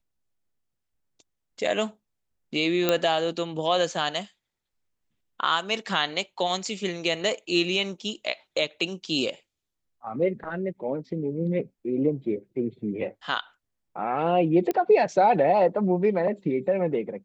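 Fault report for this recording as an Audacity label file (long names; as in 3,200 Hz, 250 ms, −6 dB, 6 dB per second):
2.890000	2.890000	click −7 dBFS
14.710000	14.710000	click −14 dBFS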